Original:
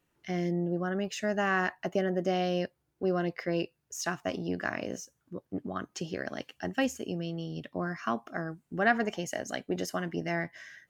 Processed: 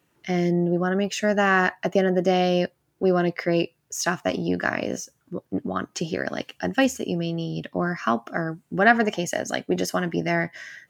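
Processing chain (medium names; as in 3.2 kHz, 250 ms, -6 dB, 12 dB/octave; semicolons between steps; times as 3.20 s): high-pass 78 Hz; trim +8.5 dB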